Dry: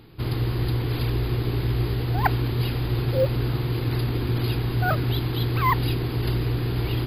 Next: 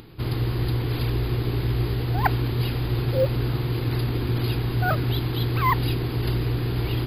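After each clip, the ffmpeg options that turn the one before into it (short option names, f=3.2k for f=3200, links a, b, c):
-af "acompressor=mode=upward:threshold=-41dB:ratio=2.5"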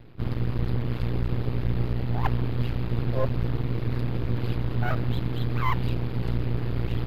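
-af "aeval=exprs='max(val(0),0)':c=same,bass=f=250:g=5,treble=f=4k:g=-12,volume=-2dB"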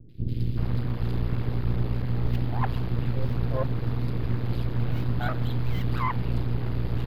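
-filter_complex "[0:a]acrossover=split=400|2600[a][b][c];[c]adelay=90[d];[b]adelay=380[e];[a][e][d]amix=inputs=3:normalize=0"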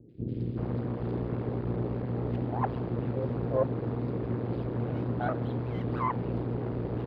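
-af "bandpass=f=450:t=q:w=0.95:csg=0,volume=5dB"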